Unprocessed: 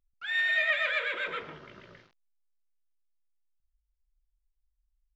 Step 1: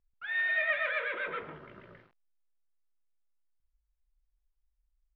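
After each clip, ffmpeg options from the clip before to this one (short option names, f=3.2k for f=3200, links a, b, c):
-af "lowpass=2k"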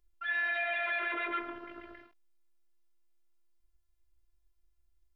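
-af "afftfilt=real='hypot(re,im)*cos(PI*b)':imag='0':win_size=512:overlap=0.75,alimiter=level_in=6dB:limit=-24dB:level=0:latency=1,volume=-6dB,volume=7.5dB"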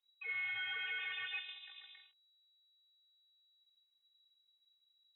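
-af "lowpass=f=3.3k:t=q:w=0.5098,lowpass=f=3.3k:t=q:w=0.6013,lowpass=f=3.3k:t=q:w=0.9,lowpass=f=3.3k:t=q:w=2.563,afreqshift=-3900,volume=-7.5dB"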